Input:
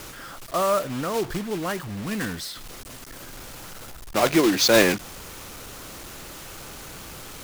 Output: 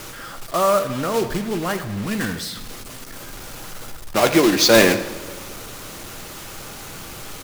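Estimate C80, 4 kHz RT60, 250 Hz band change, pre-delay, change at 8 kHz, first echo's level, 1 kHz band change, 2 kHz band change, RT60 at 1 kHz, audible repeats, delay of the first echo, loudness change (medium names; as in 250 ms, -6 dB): 12.5 dB, 1.1 s, +4.0 dB, 5 ms, +4.0 dB, -16.5 dB, +4.5 dB, +4.0 dB, 1.4 s, 1, 80 ms, +4.0 dB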